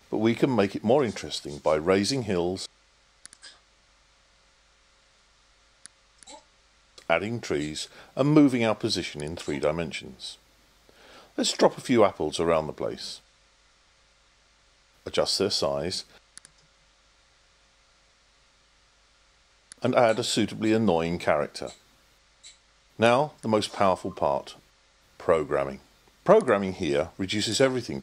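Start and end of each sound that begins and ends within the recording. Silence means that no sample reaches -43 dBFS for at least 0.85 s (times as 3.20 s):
5.86–13.18 s
15.06–16.45 s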